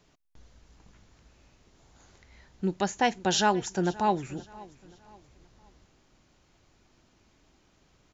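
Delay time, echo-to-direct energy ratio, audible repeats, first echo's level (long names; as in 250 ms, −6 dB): 526 ms, −20.5 dB, 2, −21.0 dB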